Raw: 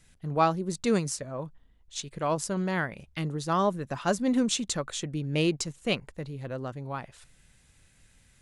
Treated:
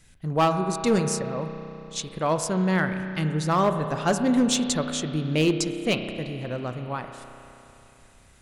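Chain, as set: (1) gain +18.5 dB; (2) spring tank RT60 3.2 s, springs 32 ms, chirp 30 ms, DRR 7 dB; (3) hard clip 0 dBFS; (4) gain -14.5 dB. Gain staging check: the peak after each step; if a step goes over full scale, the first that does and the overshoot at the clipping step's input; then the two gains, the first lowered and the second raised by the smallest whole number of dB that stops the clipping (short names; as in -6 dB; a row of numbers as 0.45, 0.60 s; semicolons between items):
+8.0, +8.5, 0.0, -14.5 dBFS; step 1, 8.5 dB; step 1 +9.5 dB, step 4 -5.5 dB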